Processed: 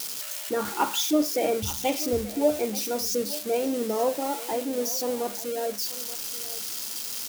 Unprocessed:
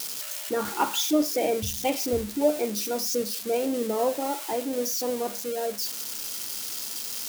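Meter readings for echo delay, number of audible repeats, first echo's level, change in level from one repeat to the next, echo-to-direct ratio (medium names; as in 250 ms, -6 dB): 882 ms, 1, -17.0 dB, no regular repeats, -17.0 dB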